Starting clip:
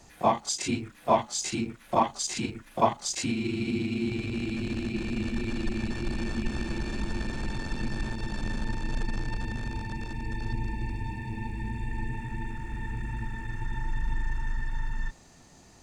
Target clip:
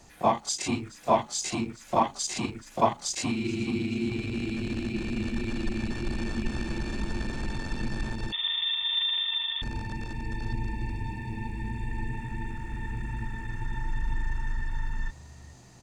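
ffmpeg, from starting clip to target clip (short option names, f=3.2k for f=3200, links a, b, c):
-filter_complex "[0:a]asplit=4[a][b][c][d];[b]adelay=426,afreqshift=49,volume=-20.5dB[e];[c]adelay=852,afreqshift=98,volume=-29.6dB[f];[d]adelay=1278,afreqshift=147,volume=-38.7dB[g];[a][e][f][g]amix=inputs=4:normalize=0,asettb=1/sr,asplit=3[h][i][j];[h]atrim=end=8.324[k];[i]atrim=start=8.32:end=9.62,asetpts=PTS-STARTPTS,afade=t=in:d=0.004:c=qsin,afade=t=out:st=1.296:d=0.004:c=qsin,lowpass=f=3.1k:t=q:w=0.5098,lowpass=f=3.1k:t=q:w=0.6013,lowpass=f=3.1k:t=q:w=0.9,lowpass=f=3.1k:t=q:w=2.563,afreqshift=-3600[l];[j]atrim=start=9.616[m];[k][l]acrossfade=d=0.004:c1=hsin:c2=qsin[n];[n][m]acrossfade=d=0.004:c1=qsin:c2=hsin"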